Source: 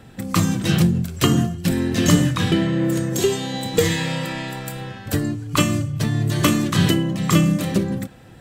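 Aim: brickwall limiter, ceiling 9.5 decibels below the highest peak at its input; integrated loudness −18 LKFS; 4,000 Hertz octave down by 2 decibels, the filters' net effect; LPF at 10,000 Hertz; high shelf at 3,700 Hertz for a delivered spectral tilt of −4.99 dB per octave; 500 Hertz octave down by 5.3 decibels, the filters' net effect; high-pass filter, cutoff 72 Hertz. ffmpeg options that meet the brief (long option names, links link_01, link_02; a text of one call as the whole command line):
ffmpeg -i in.wav -af "highpass=72,lowpass=10000,equalizer=frequency=500:width_type=o:gain=-7.5,highshelf=frequency=3700:gain=5.5,equalizer=frequency=4000:width_type=o:gain=-6,volume=5.5dB,alimiter=limit=-6.5dB:level=0:latency=1" out.wav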